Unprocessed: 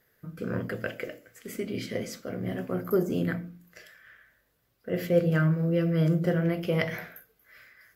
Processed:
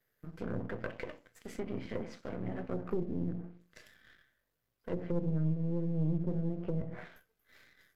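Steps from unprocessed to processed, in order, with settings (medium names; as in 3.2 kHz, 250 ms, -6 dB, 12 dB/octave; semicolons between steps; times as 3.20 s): partial rectifier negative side -12 dB; low-pass that closes with the level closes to 340 Hz, closed at -26 dBFS; waveshaping leveller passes 1; trim -6 dB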